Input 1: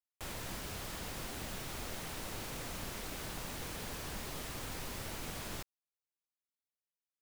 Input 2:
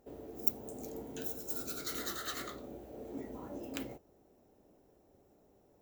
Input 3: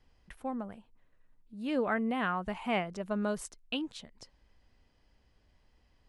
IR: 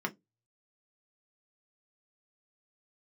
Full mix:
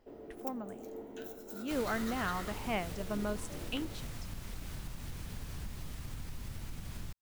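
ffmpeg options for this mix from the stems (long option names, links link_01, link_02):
-filter_complex "[0:a]asubboost=boost=5.5:cutoff=200,adelay=1500,volume=-1dB[link_01];[1:a]bass=frequency=250:gain=-2,treble=frequency=4000:gain=-9,volume=-3.5dB,asplit=2[link_02][link_03];[link_03]volume=-8.5dB[link_04];[2:a]volume=-4dB[link_05];[link_01][link_02]amix=inputs=2:normalize=0,acompressor=threshold=-38dB:ratio=6,volume=0dB[link_06];[3:a]atrim=start_sample=2205[link_07];[link_04][link_07]afir=irnorm=-1:irlink=0[link_08];[link_05][link_06][link_08]amix=inputs=3:normalize=0"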